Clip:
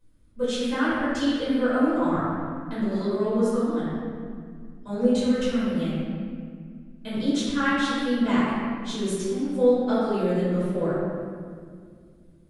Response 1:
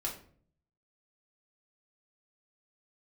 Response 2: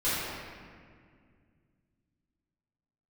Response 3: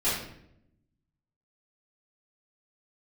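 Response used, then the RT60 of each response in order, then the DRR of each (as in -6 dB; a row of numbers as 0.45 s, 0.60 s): 2; 0.50 s, 2.0 s, 0.75 s; -3.0 dB, -14.0 dB, -12.5 dB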